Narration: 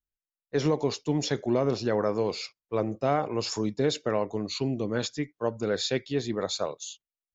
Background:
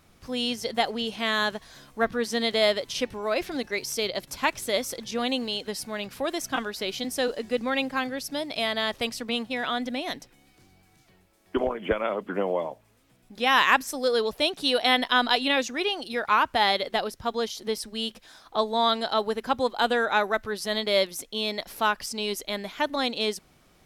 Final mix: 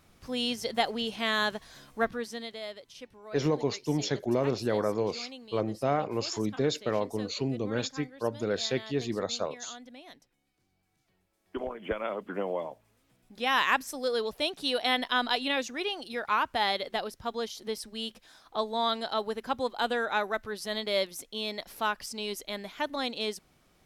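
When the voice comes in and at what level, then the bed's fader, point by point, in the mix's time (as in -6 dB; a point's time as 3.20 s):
2.80 s, -2.0 dB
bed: 2.00 s -2.5 dB
2.61 s -18 dB
10.58 s -18 dB
12.07 s -5.5 dB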